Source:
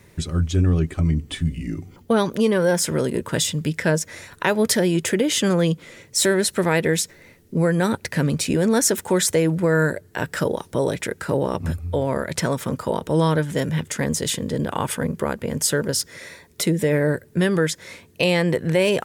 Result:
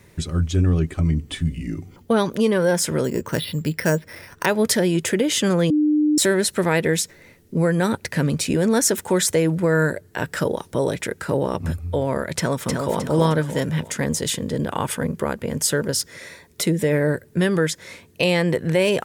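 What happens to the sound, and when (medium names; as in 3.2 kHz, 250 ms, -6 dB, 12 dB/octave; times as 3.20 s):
3.04–4.46 s: careless resampling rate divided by 6×, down filtered, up hold
5.70–6.18 s: bleep 301 Hz -14.5 dBFS
12.37–12.98 s: echo throw 310 ms, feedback 40%, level -4 dB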